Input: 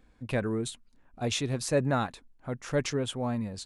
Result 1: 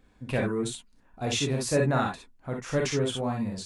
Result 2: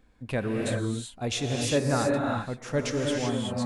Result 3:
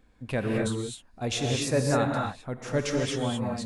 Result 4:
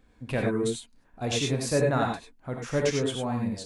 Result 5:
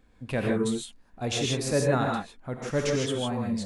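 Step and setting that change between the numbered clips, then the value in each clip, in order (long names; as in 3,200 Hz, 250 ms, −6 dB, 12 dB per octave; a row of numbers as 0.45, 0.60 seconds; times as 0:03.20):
reverb whose tail is shaped and stops, gate: 80, 410, 280, 120, 180 milliseconds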